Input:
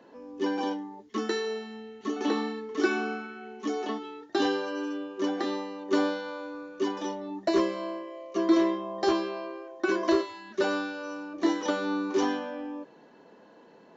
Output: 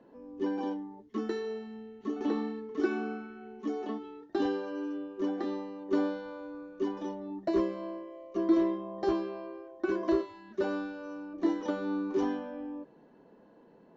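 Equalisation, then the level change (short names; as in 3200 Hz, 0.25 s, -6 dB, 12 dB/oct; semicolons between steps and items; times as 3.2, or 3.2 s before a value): tilt -3 dB/oct; -7.5 dB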